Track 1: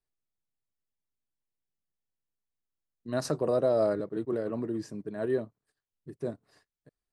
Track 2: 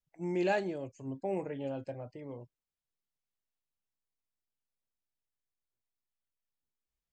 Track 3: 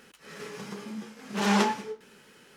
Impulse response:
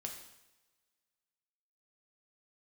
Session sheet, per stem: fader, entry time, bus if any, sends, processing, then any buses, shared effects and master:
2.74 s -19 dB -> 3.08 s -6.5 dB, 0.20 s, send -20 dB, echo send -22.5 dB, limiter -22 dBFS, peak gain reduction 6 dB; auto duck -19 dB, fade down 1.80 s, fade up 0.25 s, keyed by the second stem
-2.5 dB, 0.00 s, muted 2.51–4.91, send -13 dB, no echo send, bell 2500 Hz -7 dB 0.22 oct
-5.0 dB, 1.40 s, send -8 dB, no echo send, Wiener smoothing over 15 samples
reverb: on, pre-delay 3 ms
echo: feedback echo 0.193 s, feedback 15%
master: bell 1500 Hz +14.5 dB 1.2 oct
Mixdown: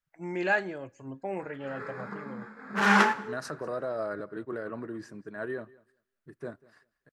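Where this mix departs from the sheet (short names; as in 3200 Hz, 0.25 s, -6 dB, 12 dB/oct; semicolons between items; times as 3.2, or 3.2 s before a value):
stem 2: missing bell 2500 Hz -7 dB 0.22 oct; stem 3: send -8 dB -> -1 dB; reverb return -6.5 dB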